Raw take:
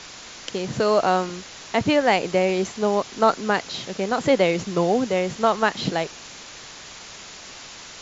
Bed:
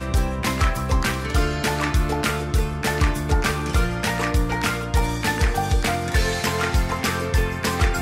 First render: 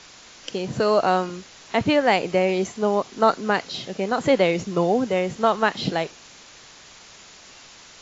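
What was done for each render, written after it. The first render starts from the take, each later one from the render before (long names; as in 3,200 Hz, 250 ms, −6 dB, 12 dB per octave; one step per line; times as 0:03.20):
noise reduction from a noise print 6 dB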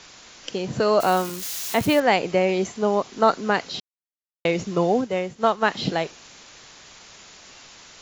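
0:01.00–0:02.00: spike at every zero crossing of −23.5 dBFS
0:03.80–0:04.45: silence
0:05.01–0:05.65: expander for the loud parts, over −38 dBFS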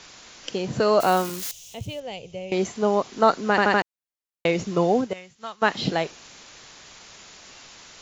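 0:01.51–0:02.52: drawn EQ curve 110 Hz 0 dB, 170 Hz −11 dB, 320 Hz −22 dB, 500 Hz −12 dB, 1,200 Hz −27 dB, 1,700 Hz −29 dB, 3,000 Hz −8 dB, 4,400 Hz −17 dB, 6,300 Hz −9 dB, 11,000 Hz −20 dB
0:03.50: stutter in place 0.08 s, 4 plays
0:05.13–0:05.62: guitar amp tone stack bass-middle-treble 5-5-5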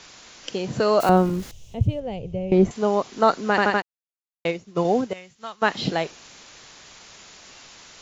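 0:01.09–0:02.71: spectral tilt −4.5 dB per octave
0:03.70–0:04.85: expander for the loud parts 2.5 to 1, over −30 dBFS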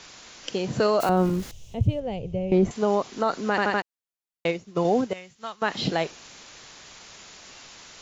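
brickwall limiter −12 dBFS, peak gain reduction 8 dB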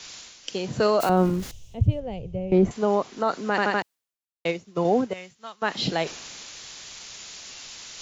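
reversed playback
upward compression, threshold −30 dBFS
reversed playback
multiband upward and downward expander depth 40%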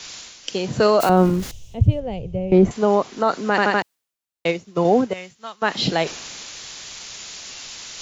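level +5 dB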